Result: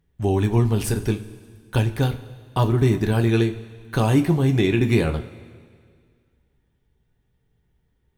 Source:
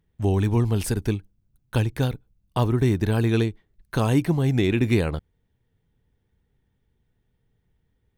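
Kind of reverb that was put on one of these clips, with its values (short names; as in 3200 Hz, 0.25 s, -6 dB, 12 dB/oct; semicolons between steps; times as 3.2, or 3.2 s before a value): two-slope reverb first 0.23 s, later 2 s, from -18 dB, DRR 4 dB; gain +1 dB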